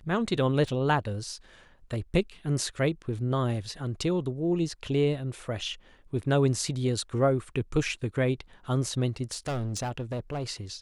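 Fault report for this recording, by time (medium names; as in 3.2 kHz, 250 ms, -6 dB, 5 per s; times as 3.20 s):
0.68 s: dropout 2.2 ms
9.32–10.44 s: clipped -27.5 dBFS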